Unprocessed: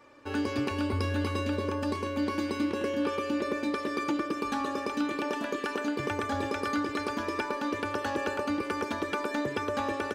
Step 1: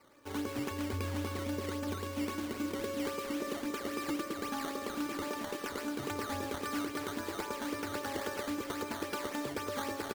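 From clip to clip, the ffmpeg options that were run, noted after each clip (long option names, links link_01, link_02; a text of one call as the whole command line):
ffmpeg -i in.wav -af "acrusher=samples=12:mix=1:aa=0.000001:lfo=1:lforange=12:lforate=3.7,aecho=1:1:967|1934|2901|3868|4835:0.266|0.128|0.0613|0.0294|0.0141,volume=-6.5dB" out.wav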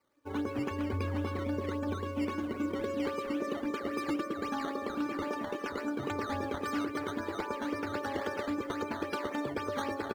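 ffmpeg -i in.wav -af "afftdn=noise_reduction=17:noise_floor=-45,volume=3dB" out.wav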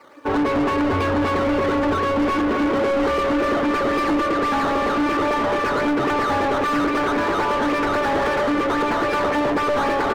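ffmpeg -i in.wav -filter_complex "[0:a]asplit=2[link_01][link_02];[link_02]highpass=frequency=720:poles=1,volume=32dB,asoftclip=type=tanh:threshold=-20.5dB[link_03];[link_01][link_03]amix=inputs=2:normalize=0,lowpass=frequency=1400:poles=1,volume=-6dB,volume=8dB" out.wav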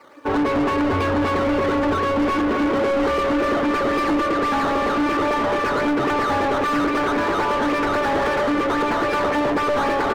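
ffmpeg -i in.wav -af anull out.wav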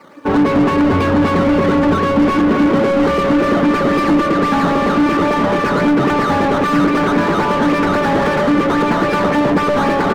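ffmpeg -i in.wav -af "equalizer=frequency=180:width=1.8:gain=14,volume=4dB" out.wav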